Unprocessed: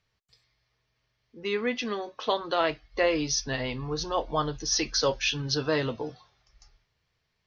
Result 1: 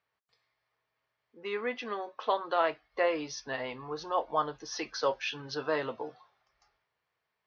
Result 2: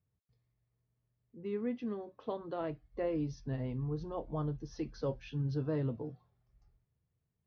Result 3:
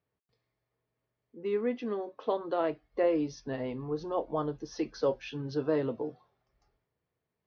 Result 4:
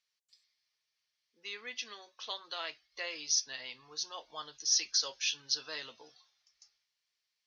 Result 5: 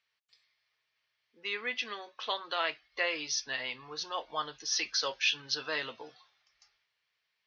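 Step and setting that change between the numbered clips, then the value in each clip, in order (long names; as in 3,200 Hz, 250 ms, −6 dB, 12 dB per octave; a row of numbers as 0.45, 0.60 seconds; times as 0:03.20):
resonant band-pass, frequency: 970, 130, 350, 7,200, 2,600 Hertz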